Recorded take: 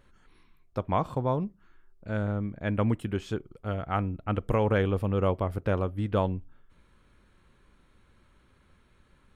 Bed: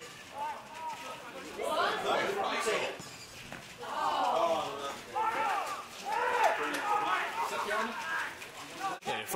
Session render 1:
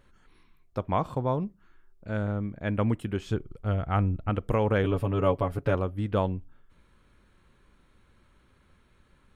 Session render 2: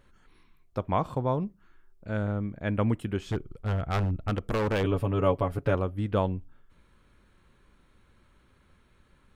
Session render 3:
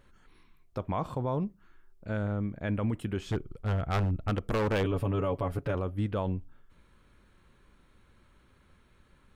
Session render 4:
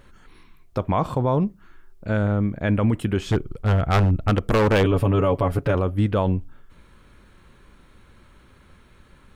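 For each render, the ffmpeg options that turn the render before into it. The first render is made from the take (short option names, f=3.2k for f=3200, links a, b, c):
-filter_complex "[0:a]asettb=1/sr,asplit=3[a][b][c];[a]atrim=end=3.264[d];[b]atrim=start=3.26:end=4.3,asetpts=PTS-STARTPTS,afade=t=in:d=0.004:c=qsin,afade=t=out:st=1.036:d=0.004:c=qsin,lowshelf=f=110:g=11.5[e];[c]atrim=start=4.296[f];[d][e]acrossfade=d=0.004:c1=hsin:c2=qsin[g];[g][f]acrossfade=d=0.004:c1=qsin:c2=hsin,asettb=1/sr,asplit=3[h][i][j];[h]atrim=end=4.834[k];[i]atrim=start=4.83:end=5.75,asetpts=PTS-STARTPTS,afade=t=in:d=0.004:c=qsin,afade=t=out:st=0.916:d=0.004:c=qsin,aecho=1:1:7.1:0.78,atrim=end_sample=40572[l];[j]atrim=start=5.746[m];[k][l]acrossfade=d=0.004:c1=hsin:c2=qsin[n];[n][m]acrossfade=d=0.004:c1=qsin:c2=hsin"
-filter_complex "[0:a]asettb=1/sr,asplit=3[a][b][c];[a]atrim=end=3.204[d];[b]atrim=start=3.2:end=4.84,asetpts=PTS-STARTPTS,afade=t=in:d=0.004:c=qsin,afade=t=out:st=1.636:d=0.004:c=qsin,aeval=exprs='0.0944*(abs(mod(val(0)/0.0944+3,4)-2)-1)':c=same[e];[c]atrim=start=4.836[f];[d][e]acrossfade=d=0.004:c1=hsin:c2=qsin[g];[g][f]acrossfade=d=0.004:c1=qsin:c2=hsin"
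-af "alimiter=limit=-21.5dB:level=0:latency=1:release=20"
-af "volume=10dB"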